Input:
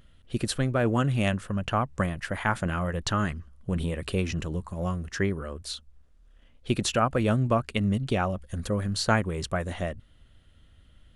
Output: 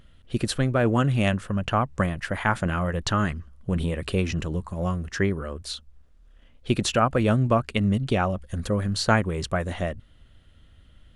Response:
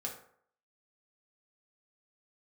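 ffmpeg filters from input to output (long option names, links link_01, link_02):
-af "highshelf=frequency=8300:gain=-5,volume=3dB"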